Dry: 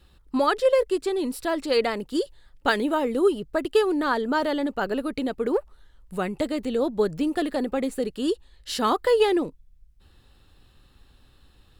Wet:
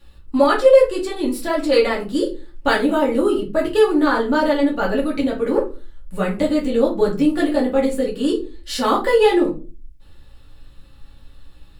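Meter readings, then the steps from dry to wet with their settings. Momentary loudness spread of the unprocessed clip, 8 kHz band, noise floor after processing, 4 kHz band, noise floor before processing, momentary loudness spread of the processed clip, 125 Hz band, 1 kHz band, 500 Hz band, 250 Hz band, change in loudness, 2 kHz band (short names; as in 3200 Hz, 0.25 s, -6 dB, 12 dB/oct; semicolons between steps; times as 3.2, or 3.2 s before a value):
8 LU, +4.5 dB, -45 dBFS, +4.0 dB, -57 dBFS, 10 LU, +7.5 dB, +5.0 dB, +7.0 dB, +7.5 dB, +6.5 dB, +5.5 dB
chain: shoebox room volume 140 m³, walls furnished, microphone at 2.4 m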